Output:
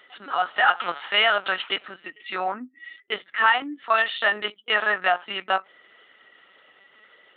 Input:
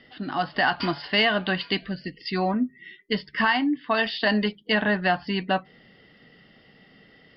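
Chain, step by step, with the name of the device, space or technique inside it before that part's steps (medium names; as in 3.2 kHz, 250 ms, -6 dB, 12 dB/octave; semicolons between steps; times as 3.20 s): talking toy (LPC vocoder at 8 kHz pitch kept; high-pass 590 Hz 12 dB/octave; peaking EQ 1.3 kHz +10.5 dB 0.23 oct); trim +2.5 dB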